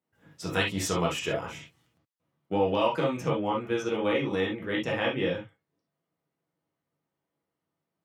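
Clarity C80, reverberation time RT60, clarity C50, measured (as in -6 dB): 35.5 dB, not exponential, 6.0 dB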